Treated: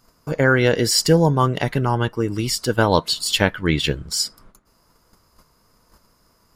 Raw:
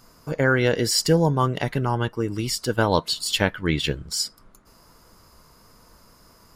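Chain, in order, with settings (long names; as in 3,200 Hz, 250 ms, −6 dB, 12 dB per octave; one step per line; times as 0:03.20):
noise gate −50 dBFS, range −10 dB
level +3.5 dB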